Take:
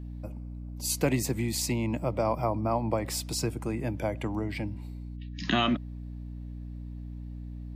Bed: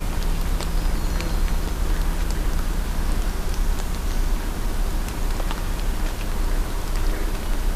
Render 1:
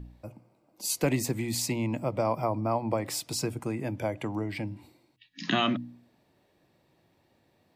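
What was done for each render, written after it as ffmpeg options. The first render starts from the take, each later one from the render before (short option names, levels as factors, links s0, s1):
-af "bandreject=f=60:t=h:w=4,bandreject=f=120:t=h:w=4,bandreject=f=180:t=h:w=4,bandreject=f=240:t=h:w=4,bandreject=f=300:t=h:w=4"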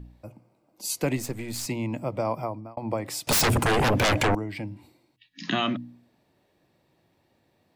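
-filter_complex "[0:a]asettb=1/sr,asplit=3[s0][s1][s2];[s0]atrim=end=1.174[s3];[s1]atrim=start=1.17:end=1.66,asetpts=PTS-STARTPTS,afade=t=in:d=0.004:c=qsin,afade=t=out:st=0.486:d=0.004:c=qsin,aeval=exprs='if(lt(val(0),0),0.447*val(0),val(0))':c=same[s4];[s2]atrim=start=1.656[s5];[s3][s4]acrossfade=d=0.004:c1=hsin:c2=qsin[s6];[s6][s5]acrossfade=d=0.004:c1=qsin:c2=hsin,asettb=1/sr,asplit=3[s7][s8][s9];[s7]atrim=end=3.274[s10];[s8]atrim=start=3.27:end=4.35,asetpts=PTS-STARTPTS,afade=t=in:d=0.004:c=qsin,afade=t=out:st=1.076:d=0.004:c=qsin,aeval=exprs='0.126*sin(PI/2*7.08*val(0)/0.126)':c=same[s11];[s9]atrim=start=4.346[s12];[s10][s11]acrossfade=d=0.004:c1=hsin:c2=qsin[s13];[s13][s12]acrossfade=d=0.004:c1=qsin:c2=hsin,asplit=2[s14][s15];[s14]atrim=end=2.77,asetpts=PTS-STARTPTS,afade=t=out:st=2.36:d=0.41[s16];[s15]atrim=start=2.77,asetpts=PTS-STARTPTS,afade=t=in:d=0.004:c=hsin[s17];[s16][s17]concat=n=2:v=0:a=1"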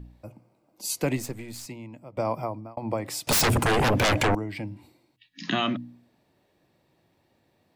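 -filter_complex "[0:a]asplit=2[s0][s1];[s0]atrim=end=2.17,asetpts=PTS-STARTPTS,afade=t=out:st=1.15:d=1.02:c=qua:silence=0.177828[s2];[s1]atrim=start=2.17,asetpts=PTS-STARTPTS,afade=t=in:d=0.004:c=hsin:silence=0.177828[s3];[s2][s3]concat=n=2:v=0:a=1"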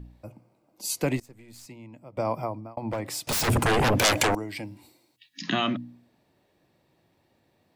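-filter_complex "[0:a]asettb=1/sr,asplit=3[s0][s1][s2];[s0]atrim=end=2.914[s3];[s1]atrim=start=2.91:end=3.48,asetpts=PTS-STARTPTS,afade=t=in:d=0.004:c=qsin,afade=t=out:st=0.566:d=0.004:c=qsin,asoftclip=type=hard:threshold=0.0562[s4];[s2]atrim=start=3.476[s5];[s3][s4]acrossfade=d=0.004:c1=hsin:c2=qsin[s6];[s6][s5]acrossfade=d=0.004:c1=qsin:c2=hsin,asettb=1/sr,asplit=3[s7][s8][s9];[s7]atrim=end=3.994[s10];[s8]atrim=start=3.99:end=5.42,asetpts=PTS-STARTPTS,afade=t=in:d=0.004:c=qsin,afade=t=out:st=1.426:d=0.004:c=qsin,bass=f=250:g=-6,treble=f=4000:g=9[s11];[s9]atrim=start=5.416[s12];[s10][s11]acrossfade=d=0.004:c1=hsin:c2=qsin[s13];[s13][s12]acrossfade=d=0.004:c1=qsin:c2=hsin,asplit=2[s14][s15];[s14]atrim=end=1.2,asetpts=PTS-STARTPTS,afade=t=out:st=1.196:d=0.004:c=hsin:silence=0.0749894[s16];[s15]atrim=start=1.2,asetpts=PTS-STARTPTS,afade=t=in:d=1.09:silence=0.0749894[s17];[s16][s17]concat=n=2:v=0:a=1"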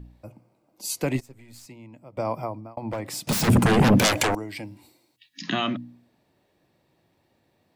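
-filter_complex "[0:a]asettb=1/sr,asplit=3[s0][s1][s2];[s0]atrim=end=1.144[s3];[s1]atrim=start=1.14:end=1.59,asetpts=PTS-STARTPTS,afade=t=in:d=0.004:c=qsin,afade=t=out:st=0.446:d=0.004:c=qsin,aecho=1:1:7.4:0.56,atrim=end_sample=19845[s4];[s2]atrim=start=1.586[s5];[s3][s4]acrossfade=d=0.004:c1=hsin:c2=qsin[s6];[s6][s5]acrossfade=d=0.004:c1=qsin:c2=hsin,asettb=1/sr,asplit=3[s7][s8][s9];[s7]atrim=end=3.134[s10];[s8]atrim=start=3.13:end=4.08,asetpts=PTS-STARTPTS,afade=t=in:d=0.004:c=qsin,afade=t=out:st=0.946:d=0.004:c=qsin,equalizer=f=190:w=1.5:g=14.5[s11];[s9]atrim=start=4.076[s12];[s10][s11]acrossfade=d=0.004:c1=hsin:c2=qsin[s13];[s13][s12]acrossfade=d=0.004:c1=qsin:c2=hsin"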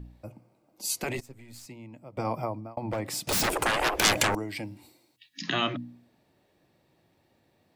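-af "bandreject=f=1000:w=23,afftfilt=real='re*lt(hypot(re,im),0.316)':imag='im*lt(hypot(re,im),0.316)':win_size=1024:overlap=0.75"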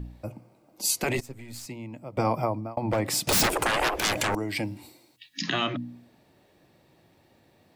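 -af "acontrast=63,alimiter=limit=0.178:level=0:latency=1:release=336"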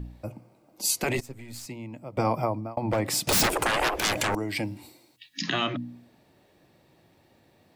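-af anull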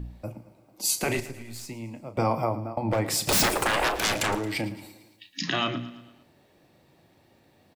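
-filter_complex "[0:a]asplit=2[s0][s1];[s1]adelay=35,volume=0.266[s2];[s0][s2]amix=inputs=2:normalize=0,aecho=1:1:112|224|336|448|560:0.158|0.0824|0.0429|0.0223|0.0116"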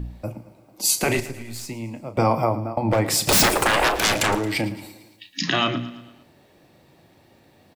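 -af "volume=1.88"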